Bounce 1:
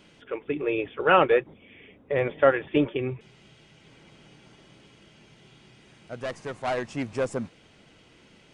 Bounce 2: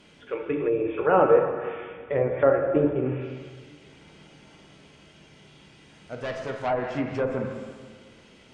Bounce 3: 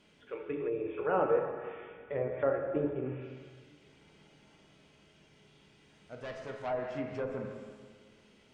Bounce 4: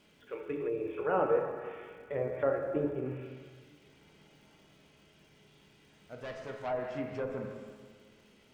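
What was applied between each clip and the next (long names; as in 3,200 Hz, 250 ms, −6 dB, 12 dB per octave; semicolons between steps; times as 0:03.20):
dense smooth reverb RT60 1.6 s, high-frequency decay 0.85×, DRR 1.5 dB; treble cut that deepens with the level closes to 1,000 Hz, closed at −20 dBFS
tuned comb filter 210 Hz, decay 1.4 s, mix 70%
surface crackle 500 per second −62 dBFS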